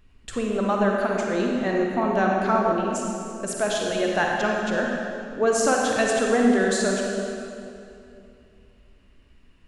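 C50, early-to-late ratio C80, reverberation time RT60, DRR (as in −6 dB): −0.5 dB, 1.0 dB, 2.7 s, −1.0 dB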